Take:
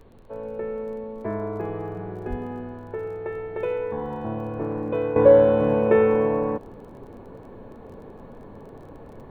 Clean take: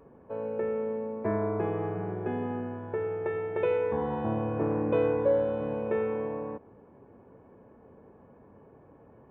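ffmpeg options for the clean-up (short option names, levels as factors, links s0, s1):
-filter_complex "[0:a]adeclick=t=4,asplit=3[s0][s1][s2];[s0]afade=t=out:st=2.29:d=0.02[s3];[s1]highpass=f=140:w=0.5412,highpass=f=140:w=1.3066,afade=t=in:st=2.29:d=0.02,afade=t=out:st=2.41:d=0.02[s4];[s2]afade=t=in:st=2.41:d=0.02[s5];[s3][s4][s5]amix=inputs=3:normalize=0,agate=range=0.0891:threshold=0.0178,asetnsamples=n=441:p=0,asendcmd='5.16 volume volume -11.5dB',volume=1"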